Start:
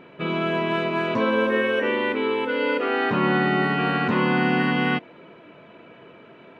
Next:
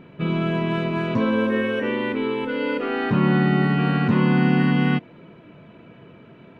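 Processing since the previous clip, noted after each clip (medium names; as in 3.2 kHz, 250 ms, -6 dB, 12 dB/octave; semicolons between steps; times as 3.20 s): tone controls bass +14 dB, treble +2 dB; trim -3.5 dB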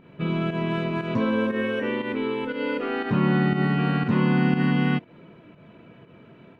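volume shaper 119 bpm, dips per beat 1, -9 dB, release 124 ms; trim -2.5 dB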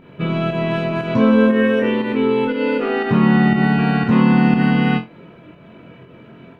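flutter echo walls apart 3.9 m, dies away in 0.22 s; trim +6 dB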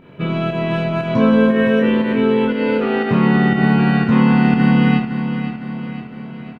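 feedback delay 510 ms, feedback 53%, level -10 dB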